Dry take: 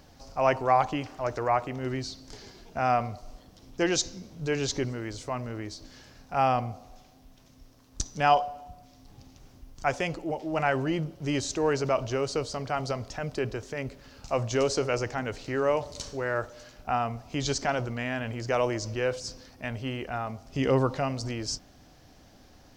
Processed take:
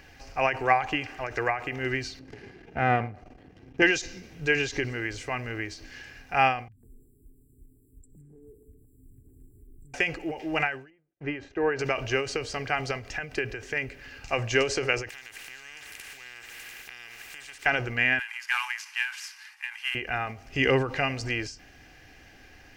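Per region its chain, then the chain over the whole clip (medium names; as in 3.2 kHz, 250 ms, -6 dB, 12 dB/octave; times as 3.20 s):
2.19–3.82 s: partial rectifier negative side -12 dB + high-pass 160 Hz + tilt EQ -4.5 dB/octave
6.68–9.94 s: brick-wall FIR band-stop 460–7300 Hz + compression 4:1, threshold -47 dBFS + three bands offset in time lows, highs, mids 40/150 ms, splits 230/1400 Hz
10.90–11.79 s: low-pass 1.6 kHz + gate -45 dBFS, range -38 dB + bass shelf 160 Hz -6.5 dB
15.09–17.66 s: bass shelf 330 Hz -6 dB + compression 4:1, threshold -43 dBFS + spectrum-flattening compressor 10:1
18.19–19.95 s: CVSD coder 64 kbps + steep high-pass 850 Hz 96 dB/octave
whole clip: high-order bell 2.1 kHz +12.5 dB 1.1 oct; comb 2.5 ms, depth 36%; endings held to a fixed fall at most 130 dB/s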